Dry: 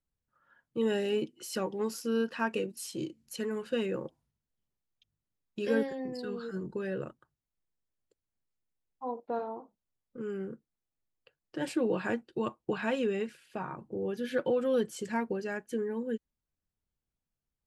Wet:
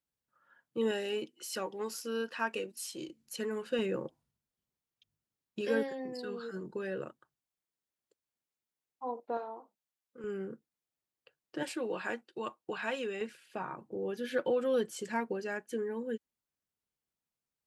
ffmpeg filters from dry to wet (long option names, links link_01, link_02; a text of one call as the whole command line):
ffmpeg -i in.wav -af "asetnsamples=nb_out_samples=441:pad=0,asendcmd='0.91 highpass f 610;3.09 highpass f 240;3.79 highpass f 100;5.61 highpass f 320;9.37 highpass f 810;10.24 highpass f 200;11.63 highpass f 780;13.21 highpass f 300',highpass=frequency=240:poles=1" out.wav